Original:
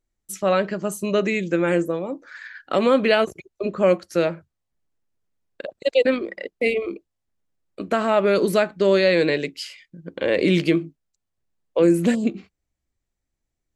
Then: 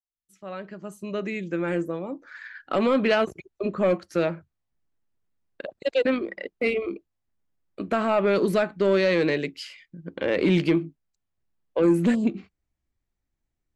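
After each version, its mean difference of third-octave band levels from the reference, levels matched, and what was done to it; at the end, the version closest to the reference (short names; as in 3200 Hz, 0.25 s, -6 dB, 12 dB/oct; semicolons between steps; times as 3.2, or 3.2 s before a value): 2.5 dB: opening faded in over 2.74 s; high shelf 4400 Hz -10 dB; soft clip -10 dBFS, distortion -19 dB; bell 520 Hz -3.5 dB 0.78 oct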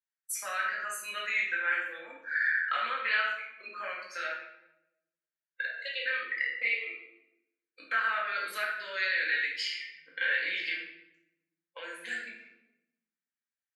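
11.0 dB: spectral noise reduction 15 dB; compressor 4:1, threshold -28 dBFS, peak gain reduction 13.5 dB; resonant high-pass 1600 Hz, resonance Q 3.8; shoebox room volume 290 m³, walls mixed, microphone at 2.1 m; gain -5 dB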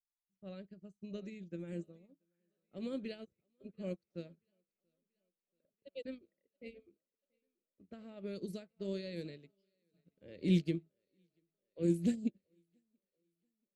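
8.0 dB: EQ curve 110 Hz 0 dB, 590 Hz -18 dB, 980 Hz -28 dB, 4600 Hz -10 dB; low-pass opened by the level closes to 1100 Hz, open at -26 dBFS; on a send: thinning echo 0.683 s, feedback 67%, high-pass 160 Hz, level -16 dB; on the sum: upward expander 2.5:1, over -46 dBFS; gain -1 dB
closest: first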